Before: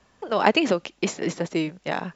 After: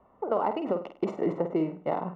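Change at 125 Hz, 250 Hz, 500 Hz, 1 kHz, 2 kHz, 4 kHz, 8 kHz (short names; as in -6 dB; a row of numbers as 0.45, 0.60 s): -5.0 dB, -4.5 dB, -3.0 dB, -5.0 dB, -19.0 dB, -22.5 dB, n/a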